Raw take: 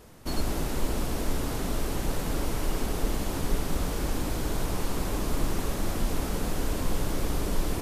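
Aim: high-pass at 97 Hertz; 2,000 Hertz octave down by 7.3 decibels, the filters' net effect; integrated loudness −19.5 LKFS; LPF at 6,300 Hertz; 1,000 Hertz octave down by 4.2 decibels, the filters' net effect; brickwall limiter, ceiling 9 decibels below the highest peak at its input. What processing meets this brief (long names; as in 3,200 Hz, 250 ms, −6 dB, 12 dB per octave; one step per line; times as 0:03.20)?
high-pass filter 97 Hz
low-pass filter 6,300 Hz
parametric band 1,000 Hz −3.5 dB
parametric band 2,000 Hz −8.5 dB
level +19 dB
brickwall limiter −10.5 dBFS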